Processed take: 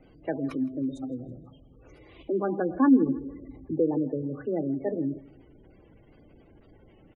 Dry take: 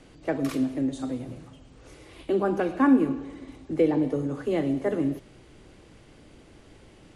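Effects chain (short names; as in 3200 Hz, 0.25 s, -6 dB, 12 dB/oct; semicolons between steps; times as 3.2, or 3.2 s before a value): spectral gate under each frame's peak -20 dB strong; 2.61–3.8 low shelf 440 Hz +4.5 dB; feedback echo 0.162 s, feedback 42%, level -22.5 dB; gain -3 dB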